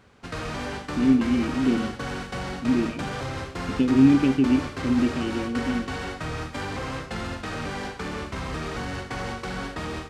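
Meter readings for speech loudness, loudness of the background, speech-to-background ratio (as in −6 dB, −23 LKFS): −23.0 LKFS, −32.0 LKFS, 9.0 dB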